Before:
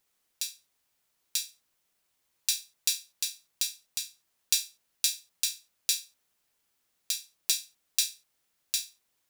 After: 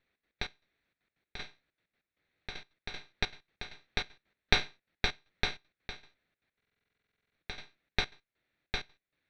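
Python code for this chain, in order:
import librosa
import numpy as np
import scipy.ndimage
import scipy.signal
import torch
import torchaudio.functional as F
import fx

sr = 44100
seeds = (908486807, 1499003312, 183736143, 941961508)

y = fx.lower_of_two(x, sr, delay_ms=0.51)
y = scipy.signal.sosfilt(scipy.signal.butter(4, 3300.0, 'lowpass', fs=sr, output='sos'), y)
y = fx.rider(y, sr, range_db=4, speed_s=0.5)
y = fx.step_gate(y, sr, bpm=194, pattern='xx.x.x..xx', floor_db=-12.0, edge_ms=4.5)
y = fx.buffer_glitch(y, sr, at_s=(6.56,), block=2048, repeats=16)
y = y * 10.0 ** (5.5 / 20.0)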